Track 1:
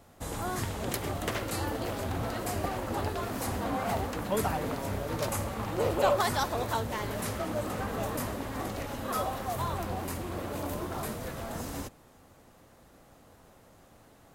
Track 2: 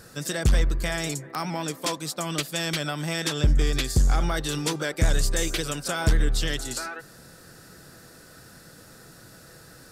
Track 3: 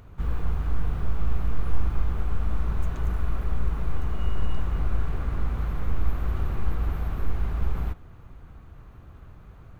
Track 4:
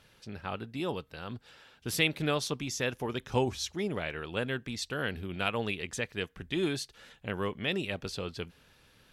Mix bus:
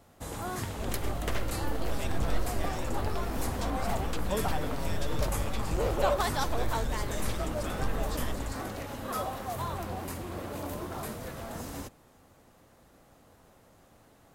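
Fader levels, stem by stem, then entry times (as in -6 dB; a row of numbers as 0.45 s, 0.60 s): -2.0 dB, -15.0 dB, -10.5 dB, -18.5 dB; 0.00 s, 1.75 s, 0.60 s, 0.00 s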